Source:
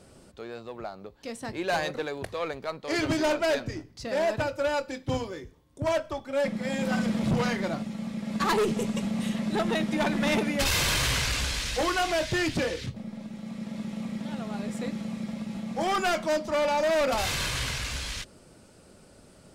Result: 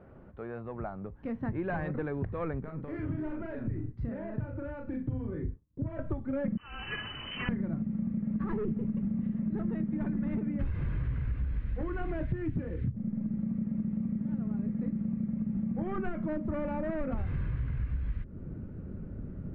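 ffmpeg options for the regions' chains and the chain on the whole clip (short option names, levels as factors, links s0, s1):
-filter_complex "[0:a]asettb=1/sr,asplit=3[s0][s1][s2];[s0]atrim=end=2.604[s3];[s1]atrim=start=2.6:end=5.99,asetpts=PTS-STARTPTS,afade=t=in:d=0.004:c=qsin,afade=t=out:st=3.386:d=0.004:c=qsin,agate=range=0.0224:threshold=0.00398:ratio=3:release=100:detection=peak,acompressor=threshold=0.00891:ratio=5:attack=3.2:release=140:knee=1:detection=peak,asplit=2[s4][s5];[s5]adelay=39,volume=0.596[s6];[s4][s6]amix=inputs=2:normalize=0,atrim=end_sample=149499[s7];[s2]atrim=start=5.986[s8];[s3][s7]acrossfade=d=0.004:c1=hsin:c2=qsin[s9];[s9][s8]acrossfade=d=0.004:c1=qsin:c2=hsin,asettb=1/sr,asplit=3[s10][s11][s12];[s10]atrim=end=6.574[s13];[s11]atrim=start=6.57:end=7.49,asetpts=PTS-STARTPTS,afade=t=in:d=0.004:c=qsin,afade=t=out:st=0.916:d=0.004:c=qsin,aeval=exprs='val(0)+0.5*0.00794*sgn(val(0))':c=same,lowpass=f=2700:t=q:w=0.5098,lowpass=f=2700:t=q:w=0.6013,lowpass=f=2700:t=q:w=0.9,lowpass=f=2700:t=q:w=2.563,afreqshift=-3200[s14];[s12]atrim=start=7.486[s15];[s13][s14]acrossfade=d=0.004:c1=hsin:c2=qsin[s16];[s16][s15]acrossfade=d=0.004:c1=qsin:c2=hsin,lowpass=f=1800:w=0.5412,lowpass=f=1800:w=1.3066,asubboost=boost=10:cutoff=230,acompressor=threshold=0.0355:ratio=10"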